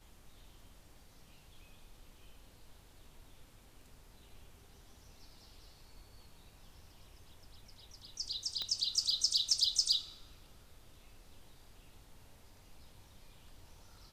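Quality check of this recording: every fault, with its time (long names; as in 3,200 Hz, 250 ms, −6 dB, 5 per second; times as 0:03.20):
0:08.62: click −23 dBFS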